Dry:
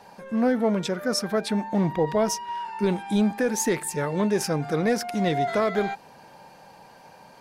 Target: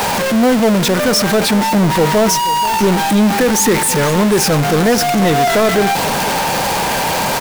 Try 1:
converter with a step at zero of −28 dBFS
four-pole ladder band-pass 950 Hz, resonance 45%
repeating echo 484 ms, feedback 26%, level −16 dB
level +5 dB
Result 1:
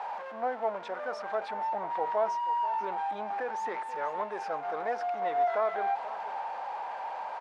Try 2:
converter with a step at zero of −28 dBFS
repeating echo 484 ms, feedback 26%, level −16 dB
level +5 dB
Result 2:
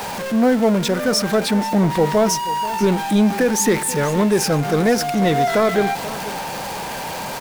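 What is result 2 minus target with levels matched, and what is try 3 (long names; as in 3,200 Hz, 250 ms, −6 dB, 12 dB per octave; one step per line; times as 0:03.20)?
converter with a step at zero: distortion −8 dB
converter with a step at zero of −16 dBFS
repeating echo 484 ms, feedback 26%, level −16 dB
level +5 dB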